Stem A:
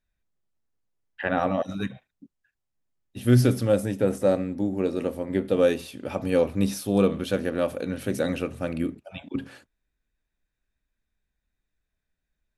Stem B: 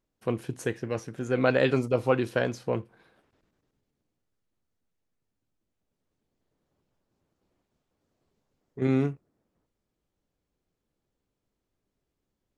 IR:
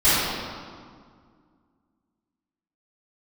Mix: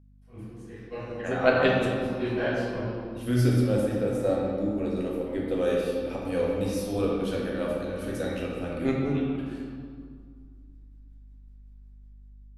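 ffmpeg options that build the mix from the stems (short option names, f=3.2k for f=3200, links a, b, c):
-filter_complex "[0:a]volume=-16dB,asplit=3[a][b][c];[b]volume=-16.5dB[d];[1:a]aeval=exprs='val(0)*pow(10,-26*(0.5-0.5*cos(2*PI*5.4*n/s))/20)':c=same,volume=-3.5dB,asplit=2[e][f];[f]volume=-18.5dB[g];[c]apad=whole_len=554549[h];[e][h]sidechaingate=range=-33dB:threshold=-50dB:ratio=16:detection=peak[i];[2:a]atrim=start_sample=2205[j];[d][g]amix=inputs=2:normalize=0[k];[k][j]afir=irnorm=-1:irlink=0[l];[a][i][l]amix=inputs=3:normalize=0,dynaudnorm=f=790:g=3:m=7dB,aeval=exprs='val(0)+0.002*(sin(2*PI*50*n/s)+sin(2*PI*2*50*n/s)/2+sin(2*PI*3*50*n/s)/3+sin(2*PI*4*50*n/s)/4+sin(2*PI*5*50*n/s)/5)':c=same,asubboost=boost=5:cutoff=52"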